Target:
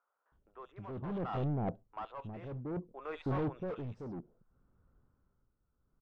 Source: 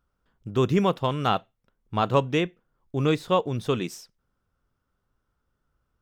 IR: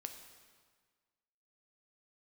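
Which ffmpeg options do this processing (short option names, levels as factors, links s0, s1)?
-filter_complex "[0:a]areverse,acompressor=threshold=0.0398:ratio=6,areverse,acrossover=split=640|2600[s0][s1][s2];[s2]adelay=70[s3];[s0]adelay=320[s4];[s4][s1][s3]amix=inputs=3:normalize=0,asoftclip=type=hard:threshold=0.015,tremolo=f=0.62:d=0.71,adynamicsmooth=sensitivity=1:basefreq=1200,volume=2.24"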